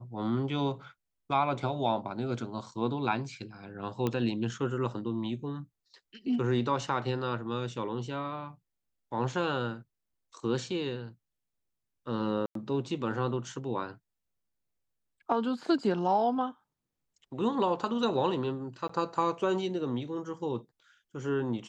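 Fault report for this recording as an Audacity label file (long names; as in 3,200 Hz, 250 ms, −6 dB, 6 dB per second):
4.070000	4.070000	click −17 dBFS
12.460000	12.550000	drop-out 93 ms
18.880000	18.890000	drop-out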